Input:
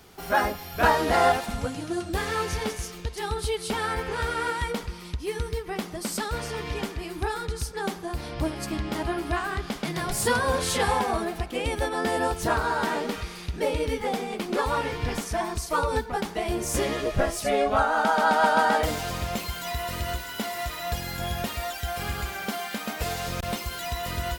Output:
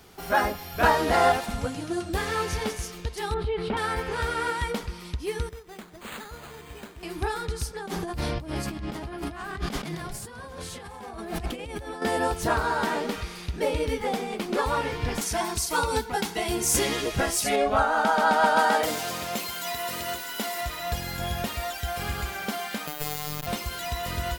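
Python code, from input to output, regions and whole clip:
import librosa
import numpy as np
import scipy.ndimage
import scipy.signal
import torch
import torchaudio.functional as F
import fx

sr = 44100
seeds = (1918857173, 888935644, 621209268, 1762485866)

y = fx.chain(x, sr, fx.air_absorb(metres=460.0),
    fx.env_flatten(amount_pct=70), at=(3.34, 3.77))
y = fx.chain(y, sr, fx.ladder_lowpass(hz=7400.0, resonance_pct=75),
    fx.resample_bad(factor=8, down='none', up='hold'), at=(5.49, 7.03))
y = fx.chain(y, sr, fx.over_compress(threshold_db=-37.0, ratio=-1.0),
    fx.low_shelf(hz=200.0, db=5.5),
    fx.echo_single(ms=759, db=-23.0), at=(7.77, 12.02))
y = fx.chain(y, sr, fx.high_shelf(hz=2200.0, db=9.5),
    fx.notch_comb(f0_hz=600.0), at=(15.21, 17.56))
y = fx.chain(y, sr, fx.highpass(hz=200.0, slope=12),
    fx.high_shelf(hz=4900.0, db=4.5), at=(18.56, 20.61))
y = fx.chain(y, sr, fx.high_shelf(hz=11000.0, db=11.5),
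    fx.robotise(hz=150.0), at=(22.87, 23.47))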